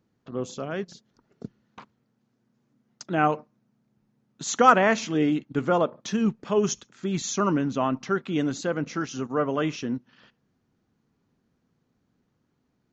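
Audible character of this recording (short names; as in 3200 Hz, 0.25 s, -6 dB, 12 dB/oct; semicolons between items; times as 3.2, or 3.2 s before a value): noise floor -74 dBFS; spectral tilt -5.0 dB/oct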